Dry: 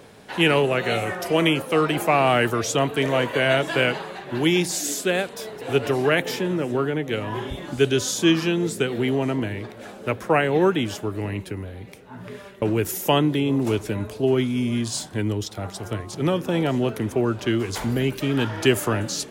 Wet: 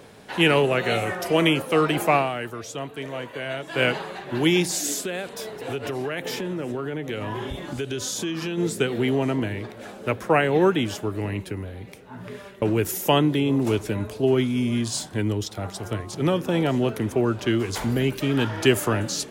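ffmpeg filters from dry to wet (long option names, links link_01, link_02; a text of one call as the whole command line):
ffmpeg -i in.wav -filter_complex "[0:a]asplit=3[link_01][link_02][link_03];[link_01]afade=type=out:start_time=5.01:duration=0.02[link_04];[link_02]acompressor=threshold=-25dB:ratio=6:attack=3.2:release=140:knee=1:detection=peak,afade=type=in:start_time=5.01:duration=0.02,afade=type=out:start_time=8.57:duration=0.02[link_05];[link_03]afade=type=in:start_time=8.57:duration=0.02[link_06];[link_04][link_05][link_06]amix=inputs=3:normalize=0,asplit=3[link_07][link_08][link_09];[link_07]atrim=end=2.35,asetpts=PTS-STARTPTS,afade=type=out:start_time=2.16:duration=0.19:curve=qua:silence=0.281838[link_10];[link_08]atrim=start=2.35:end=3.64,asetpts=PTS-STARTPTS,volume=-11dB[link_11];[link_09]atrim=start=3.64,asetpts=PTS-STARTPTS,afade=type=in:duration=0.19:curve=qua:silence=0.281838[link_12];[link_10][link_11][link_12]concat=n=3:v=0:a=1" out.wav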